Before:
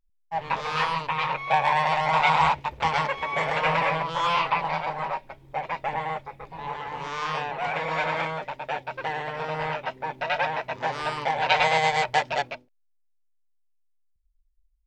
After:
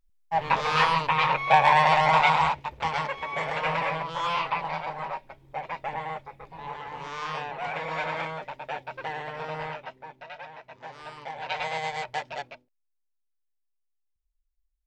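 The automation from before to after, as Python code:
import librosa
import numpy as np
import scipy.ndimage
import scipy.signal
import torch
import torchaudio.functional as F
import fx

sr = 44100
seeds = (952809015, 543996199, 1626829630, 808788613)

y = fx.gain(x, sr, db=fx.line((2.05, 3.5), (2.52, -4.0), (9.56, -4.0), (10.38, -17.0), (11.8, -9.0)))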